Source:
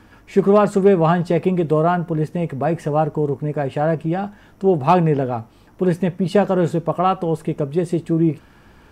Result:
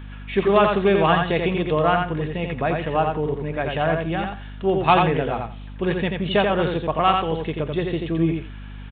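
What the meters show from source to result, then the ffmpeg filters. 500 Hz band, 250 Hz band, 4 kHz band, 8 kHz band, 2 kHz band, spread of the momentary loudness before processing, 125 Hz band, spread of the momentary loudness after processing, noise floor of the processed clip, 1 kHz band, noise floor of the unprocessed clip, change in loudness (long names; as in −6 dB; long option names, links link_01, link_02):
−3.0 dB, −4.5 dB, +9.0 dB, can't be measured, +5.5 dB, 8 LU, −4.5 dB, 10 LU, −36 dBFS, 0.0 dB, −50 dBFS, −2.5 dB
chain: -af "tiltshelf=frequency=1100:gain=-6,aecho=1:1:86|172|258:0.631|0.107|0.0182,aeval=exprs='val(0)+0.02*(sin(2*PI*50*n/s)+sin(2*PI*2*50*n/s)/2+sin(2*PI*3*50*n/s)/3+sin(2*PI*4*50*n/s)/4+sin(2*PI*5*50*n/s)/5)':channel_layout=same,aresample=8000,aresample=44100,aemphasis=mode=production:type=75fm"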